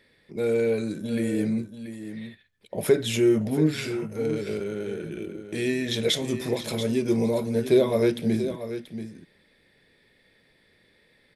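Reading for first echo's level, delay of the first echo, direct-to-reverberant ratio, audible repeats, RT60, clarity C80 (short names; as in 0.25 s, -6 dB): -11.0 dB, 0.683 s, none, 1, none, none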